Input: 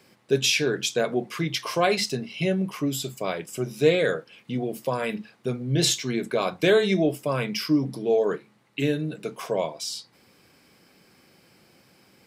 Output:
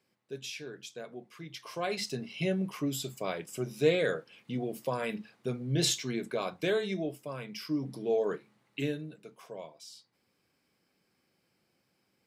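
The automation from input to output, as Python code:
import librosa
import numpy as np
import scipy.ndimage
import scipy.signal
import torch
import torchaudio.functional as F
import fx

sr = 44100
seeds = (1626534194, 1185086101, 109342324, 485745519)

y = fx.gain(x, sr, db=fx.line((1.37, -19.0), (2.25, -6.0), (5.97, -6.0), (7.44, -14.5), (8.01, -7.0), (8.81, -7.0), (9.24, -17.5)))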